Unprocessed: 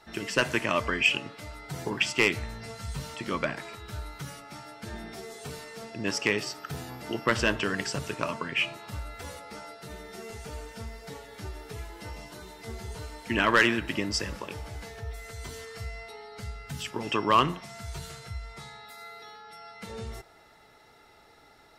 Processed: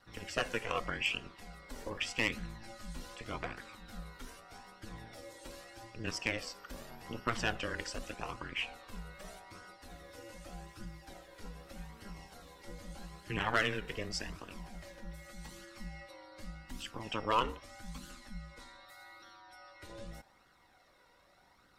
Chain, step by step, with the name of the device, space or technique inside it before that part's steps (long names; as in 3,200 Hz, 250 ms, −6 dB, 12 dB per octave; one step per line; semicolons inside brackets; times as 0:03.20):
alien voice (ring modulation 110 Hz; flanger 0.83 Hz, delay 0.6 ms, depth 1.6 ms, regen +40%)
level −2 dB